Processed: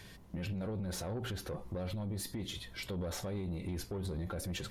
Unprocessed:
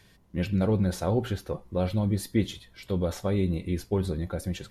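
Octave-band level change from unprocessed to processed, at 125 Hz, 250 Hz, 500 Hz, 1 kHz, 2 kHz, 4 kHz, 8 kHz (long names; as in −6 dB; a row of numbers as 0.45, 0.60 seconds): −11.0, −12.5, −12.0, −10.0, −5.5, −2.5, −2.0 decibels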